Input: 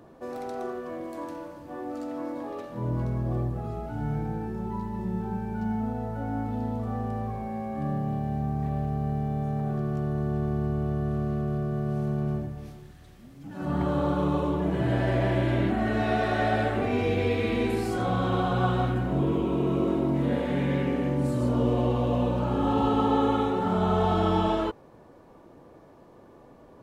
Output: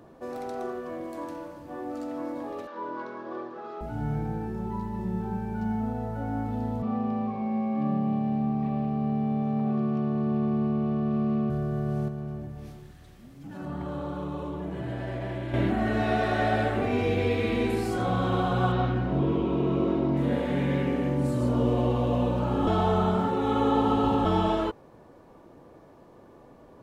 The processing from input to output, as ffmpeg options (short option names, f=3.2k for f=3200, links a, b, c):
-filter_complex "[0:a]asettb=1/sr,asplit=3[a][b][c];[a]atrim=end=2.674[d];[b]atrim=start=2.67:end=3.81,asetpts=PTS-STARTPTS,afade=t=in:d=0.004:c=qsin,afade=t=out:st=1.136:d=0.004:c=qsin,highpass=f=320:w=0.5412,highpass=f=320:w=1.3066,equalizer=f=710:t=q:w=4:g=-7,equalizer=f=1k:t=q:w=4:g=8,equalizer=f=1.5k:t=q:w=4:g=9,equalizer=f=3.6k:t=q:w=4:g=3,lowpass=f=5.4k:w=0.5412,lowpass=f=5.4k:w=1.3066[e];[c]atrim=start=3.806[f];[d][e]acrossfade=d=0.004:c1=hsin:c2=qsin[g];[g][f]acrossfade=d=0.004:c1=qsin:c2=hsin,asettb=1/sr,asplit=3[h][i][j];[h]atrim=end=6.824[k];[i]atrim=start=6.82:end=11.5,asetpts=PTS-STARTPTS,afade=t=in:d=0.004:c=qsin,afade=t=out:st=4.676:d=0.004:c=qsin,highpass=170,equalizer=f=210:t=q:w=4:g=10,equalizer=f=1.1k:t=q:w=4:g=5,equalizer=f=1.6k:t=q:w=4:g=-8,equalizer=f=2.5k:t=q:w=4:g=7,lowpass=f=5k:w=0.5412,lowpass=f=5k:w=1.3066[l];[j]atrim=start=11.496[m];[k][l]acrossfade=d=0.004:c1=hsin:c2=qsin[n];[n][m]acrossfade=d=0.004:c1=qsin:c2=hsin,asettb=1/sr,asplit=3[o][p][q];[o]atrim=end=12.084[r];[p]atrim=start=12.08:end=15.54,asetpts=PTS-STARTPTS,afade=t=in:d=0.004:c=qsin,afade=t=out:st=3.456:d=0.004:c=qsin,acompressor=threshold=-36dB:ratio=2:attack=3.2:release=140:knee=1:detection=peak[s];[q]atrim=start=15.536[t];[r][s]acrossfade=d=0.004:c1=hsin:c2=qsin[u];[u][t]acrossfade=d=0.004:c1=qsin:c2=hsin,asettb=1/sr,asplit=3[v][w][x];[v]atrim=end=18.724[y];[w]atrim=start=18.72:end=20.17,asetpts=PTS-STARTPTS,afade=t=in:d=0.004:c=qsin,afade=t=out:st=1.446:d=0.004:c=qsin,lowpass=f=5.5k:w=0.5412,lowpass=f=5.5k:w=1.3066[z];[x]atrim=start=20.166[aa];[y][z]acrossfade=d=0.004:c1=hsin:c2=qsin[ab];[ab][aa]acrossfade=d=0.004:c1=qsin:c2=hsin,asplit=3[ac][ad][ae];[ac]atrim=end=22.672[af];[ad]atrim=start=22.668:end=24.252,asetpts=PTS-STARTPTS,areverse[ag];[ae]atrim=start=24.248[ah];[af][ag]acrossfade=d=0.004:c1=hsin:c2=hsin[ai];[ai][ah]acrossfade=d=0.004:c1=hsin:c2=hsin"